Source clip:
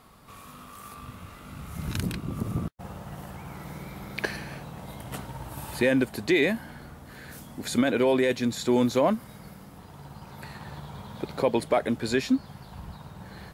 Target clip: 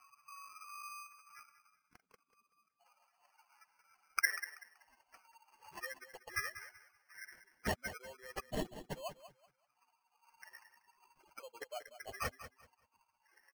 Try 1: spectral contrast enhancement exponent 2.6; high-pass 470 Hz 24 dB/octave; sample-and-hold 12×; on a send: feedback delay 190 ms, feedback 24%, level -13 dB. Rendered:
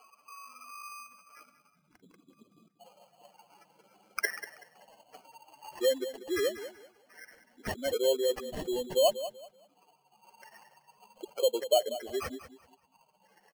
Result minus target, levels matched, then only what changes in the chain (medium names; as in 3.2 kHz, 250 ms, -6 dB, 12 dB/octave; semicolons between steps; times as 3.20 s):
500 Hz band +8.5 dB
change: high-pass 1.2 kHz 24 dB/octave